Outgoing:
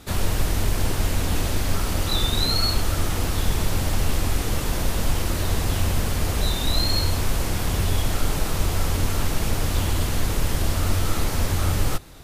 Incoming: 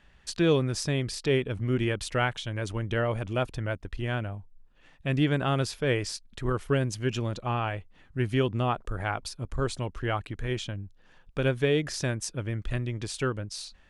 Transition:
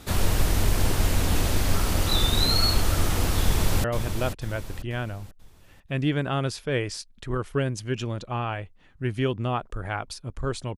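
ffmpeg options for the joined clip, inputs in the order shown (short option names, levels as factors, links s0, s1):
-filter_complex "[0:a]apad=whole_dur=10.77,atrim=end=10.77,atrim=end=3.842[s0];[1:a]atrim=start=2.988:end=9.92[s1];[s0][s1]acrossfade=d=0.004:c1=hsin:c2=hsin,asplit=2[s2][s3];[s3]afade=t=in:st=3.43:d=0.01,afade=t=out:st=3.84:d=0.01,aecho=0:1:490|980|1470|1960|2450:0.398107|0.159243|0.0636971|0.0254789|0.0101915[s4];[s2][s4]amix=inputs=2:normalize=0"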